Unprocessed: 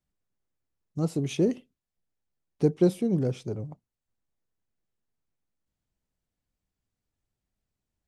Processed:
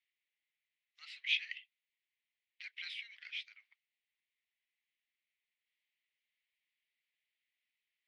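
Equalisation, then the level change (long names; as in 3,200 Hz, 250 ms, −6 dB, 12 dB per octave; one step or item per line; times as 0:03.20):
Chebyshev high-pass filter 2,000 Hz, order 5
low-pass filter 4,800 Hz 12 dB per octave
high-frequency loss of the air 440 metres
+17.5 dB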